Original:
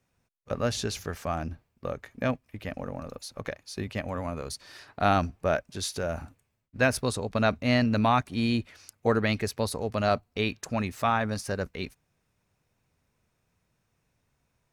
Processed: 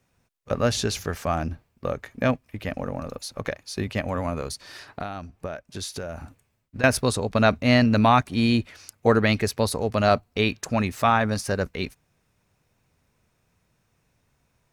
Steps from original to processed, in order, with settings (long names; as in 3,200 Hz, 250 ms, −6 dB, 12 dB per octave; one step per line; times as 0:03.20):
0:04.46–0:06.84: downward compressor 20 to 1, threshold −35 dBFS, peak gain reduction 18.5 dB
level +5.5 dB